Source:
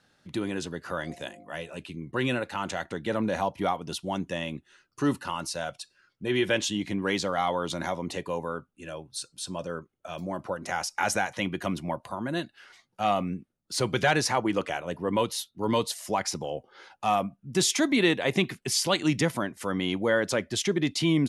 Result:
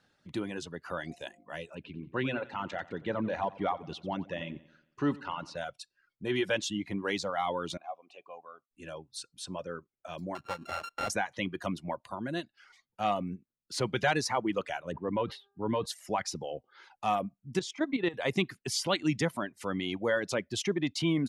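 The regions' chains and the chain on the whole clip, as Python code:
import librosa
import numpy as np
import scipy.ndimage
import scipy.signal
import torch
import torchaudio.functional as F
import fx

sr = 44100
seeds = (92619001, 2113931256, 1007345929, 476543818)

y = fx.chain(x, sr, fx.lowpass(hz=3400.0, slope=12),
    fx.echo_feedback(ms=90, feedback_pct=51, wet_db=-9.5), at=(1.75, 5.57))
y = fx.chain(y, sr, fx.vowel_filter(vowel='a'),
    fx.high_shelf(hz=2700.0, db=8.0), at=(7.77, 8.71))
y = fx.chain(y, sr, fx.sample_sort(block=32),
    fx.clip_hard(threshold_db=-21.5),
    fx.lowpass(hz=3400.0, slope=6), at=(10.35, 11.1))
y = fx.air_absorb(y, sr, metres=460.0, at=(14.91, 15.85), fade=0.02)
y = fx.dmg_buzz(y, sr, base_hz=400.0, harmonics=4, level_db=-64.0, tilt_db=-5, odd_only=False, at=(14.91, 15.85), fade=0.02)
y = fx.sustainer(y, sr, db_per_s=130.0, at=(14.91, 15.85), fade=0.02)
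y = fx.chain(y, sr, fx.high_shelf(hz=2900.0, db=-8.5),
    fx.level_steps(step_db=11),
    fx.lowpass(hz=7500.0, slope=12), at=(17.59, 18.14))
y = fx.dereverb_blind(y, sr, rt60_s=0.78)
y = fx.high_shelf(y, sr, hz=10000.0, db=-10.0)
y = y * 10.0 ** (-3.5 / 20.0)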